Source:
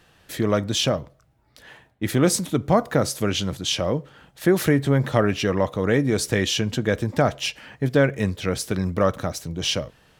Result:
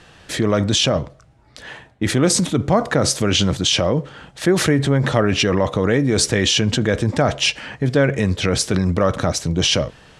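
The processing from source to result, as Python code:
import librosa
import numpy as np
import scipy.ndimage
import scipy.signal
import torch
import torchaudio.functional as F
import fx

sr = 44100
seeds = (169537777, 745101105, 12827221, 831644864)

p1 = scipy.signal.sosfilt(scipy.signal.butter(4, 9200.0, 'lowpass', fs=sr, output='sos'), x)
p2 = fx.over_compress(p1, sr, threshold_db=-26.0, ratio=-0.5)
p3 = p1 + (p2 * 10.0 ** (-0.5 / 20.0))
y = p3 * 10.0 ** (1.5 / 20.0)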